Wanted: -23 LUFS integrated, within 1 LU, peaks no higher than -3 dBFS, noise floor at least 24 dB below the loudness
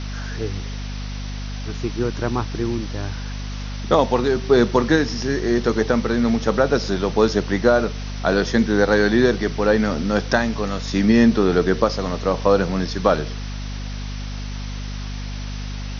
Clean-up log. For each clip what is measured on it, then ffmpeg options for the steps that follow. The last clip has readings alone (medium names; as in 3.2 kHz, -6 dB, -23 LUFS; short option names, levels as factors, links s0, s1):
hum 50 Hz; highest harmonic 250 Hz; hum level -27 dBFS; noise floor -29 dBFS; noise floor target -44 dBFS; loudness -20.0 LUFS; peak level -2.5 dBFS; loudness target -23.0 LUFS
-> -af "bandreject=f=50:t=h:w=6,bandreject=f=100:t=h:w=6,bandreject=f=150:t=h:w=6,bandreject=f=200:t=h:w=6,bandreject=f=250:t=h:w=6"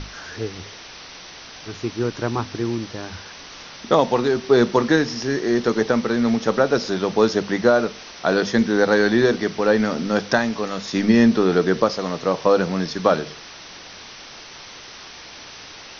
hum not found; noise floor -40 dBFS; noise floor target -44 dBFS
-> -af "afftdn=nr=6:nf=-40"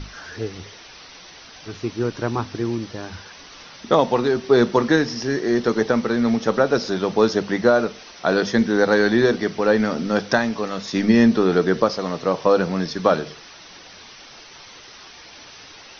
noise floor -43 dBFS; noise floor target -44 dBFS
-> -af "afftdn=nr=6:nf=-43"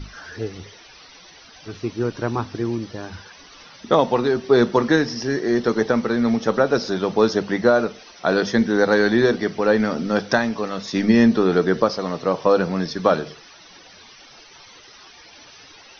noise floor -46 dBFS; loudness -20.0 LUFS; peak level -2.5 dBFS; loudness target -23.0 LUFS
-> -af "volume=0.708"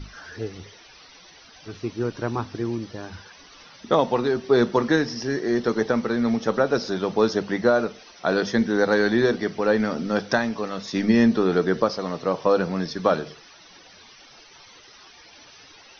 loudness -23.0 LUFS; peak level -5.5 dBFS; noise floor -49 dBFS